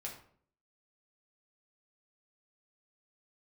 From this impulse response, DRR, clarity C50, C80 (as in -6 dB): -2.0 dB, 7.0 dB, 11.0 dB